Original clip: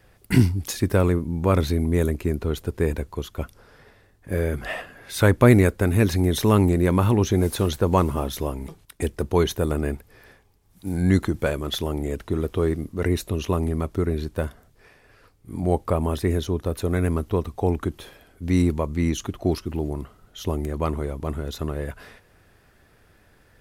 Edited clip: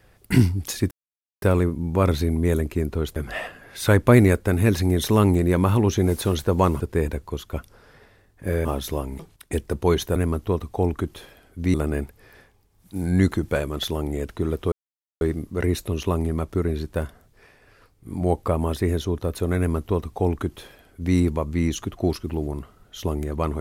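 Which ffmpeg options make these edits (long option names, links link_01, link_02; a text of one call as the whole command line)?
ffmpeg -i in.wav -filter_complex "[0:a]asplit=8[link_01][link_02][link_03][link_04][link_05][link_06][link_07][link_08];[link_01]atrim=end=0.91,asetpts=PTS-STARTPTS,afade=type=out:start_time=0.906:duration=0.004:curve=hsin,apad=pad_dur=0.51[link_09];[link_02]atrim=start=0.91:end=2.652,asetpts=PTS-STARTPTS,afade=type=in:duration=0.004:curve=hsin[link_10];[link_03]atrim=start=4.498:end=8.142[link_11];[link_04]atrim=start=2.648:end=4.502[link_12];[link_05]atrim=start=8.138:end=9.652[link_13];[link_06]atrim=start=16.998:end=18.582[link_14];[link_07]atrim=start=9.648:end=12.63,asetpts=PTS-STARTPTS,afade=type=out:start_time=2.978:duration=0.004:curve=hsin,apad=pad_dur=0.49[link_15];[link_08]atrim=start=12.63,asetpts=PTS-STARTPTS,afade=type=in:duration=0.004:curve=hsin[link_16];[link_09][link_10]concat=n=2:v=0:a=1[link_17];[link_17][link_11]acrossfade=duration=0.004:curve1=hsin:curve2=hsin[link_18];[link_18][link_12]acrossfade=duration=0.004:curve1=hsin:curve2=hsin[link_19];[link_19][link_13]acrossfade=duration=0.004:curve1=hsin:curve2=hsin[link_20];[link_20][link_14]acrossfade=duration=0.004:curve1=hsin:curve2=hsin[link_21];[link_15][link_16]concat=n=2:v=0:a=1[link_22];[link_21][link_22]acrossfade=duration=0.004:curve1=hsin:curve2=hsin" out.wav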